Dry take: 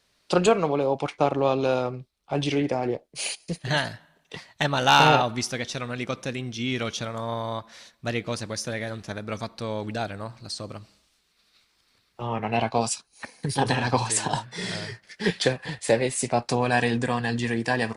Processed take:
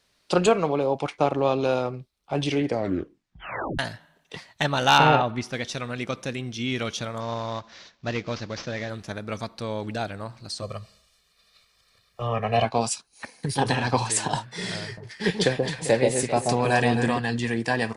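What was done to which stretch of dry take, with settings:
2.65 tape stop 1.14 s
4.98–5.53 tone controls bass +1 dB, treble -14 dB
7.2–8.9 CVSD 32 kbps
10.62–12.65 comb 1.7 ms, depth 95%
14.84–17.18 echo with dull and thin repeats by turns 0.132 s, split 970 Hz, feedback 50%, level -2.5 dB

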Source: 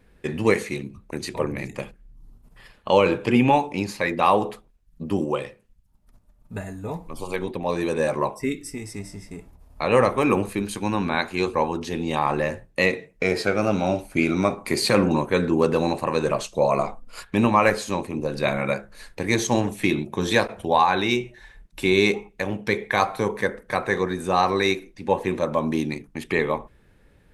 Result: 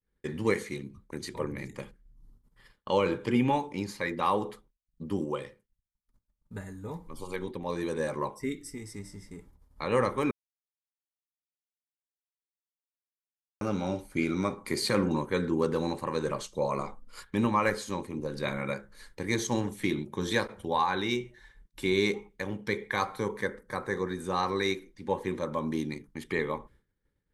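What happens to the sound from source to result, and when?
10.31–13.61 mute
23.61–24.06 bell 2800 Hz -8 dB 1 oct
whole clip: expander -44 dBFS; bell 680 Hz -14.5 dB 0.22 oct; notch 2600 Hz, Q 6.3; gain -7 dB

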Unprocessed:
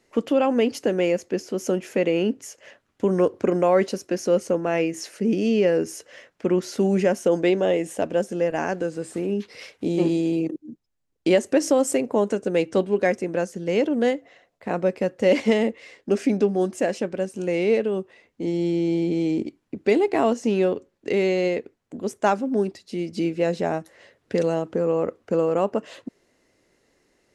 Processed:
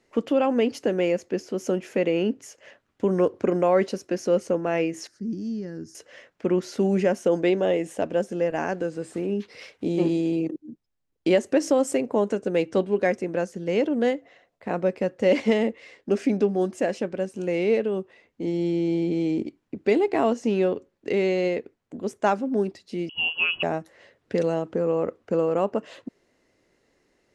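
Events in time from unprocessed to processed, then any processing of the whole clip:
5.07–5.95 EQ curve 100 Hz 0 dB, 340 Hz -9 dB, 480 Hz -23 dB, 1700 Hz -13 dB, 2600 Hz -29 dB, 4900 Hz -4 dB, 12000 Hz -18 dB
23.09–23.63 inverted band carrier 3100 Hz
whole clip: high shelf 7900 Hz -8.5 dB; gain -1.5 dB

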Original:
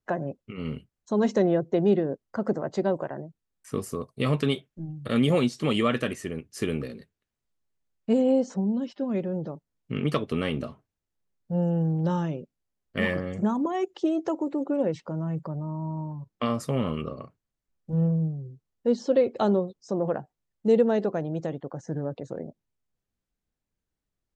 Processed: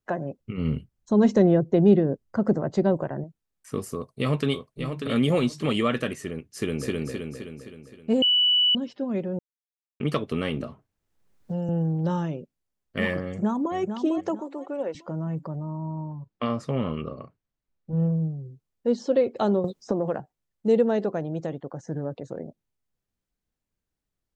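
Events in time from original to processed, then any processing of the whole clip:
0.39–3.24 low shelf 220 Hz +12 dB
3.94–5.12 echo throw 0.59 s, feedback 20%, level -6.5 dB
6.44–6.95 echo throw 0.26 s, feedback 55%, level -0.5 dB
8.22–8.75 bleep 2960 Hz -17 dBFS
9.39–10 mute
10.6–11.69 three-band squash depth 70%
13.26–13.75 echo throw 0.45 s, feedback 35%, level -7.5 dB
14.4–14.95 Bessel high-pass 530 Hz
15.77–18 air absorption 100 m
19.64–20.2 three-band squash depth 100%

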